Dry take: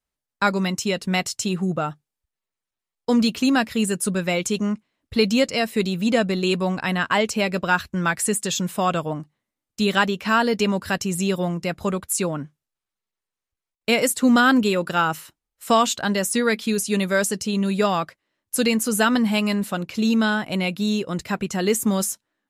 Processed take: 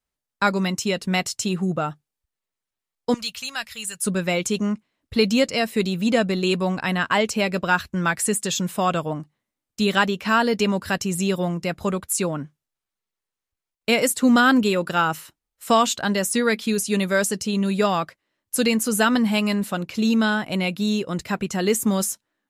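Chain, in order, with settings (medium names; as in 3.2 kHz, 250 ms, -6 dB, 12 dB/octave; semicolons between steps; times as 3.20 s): 3.14–4.04 s: amplifier tone stack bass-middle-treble 10-0-10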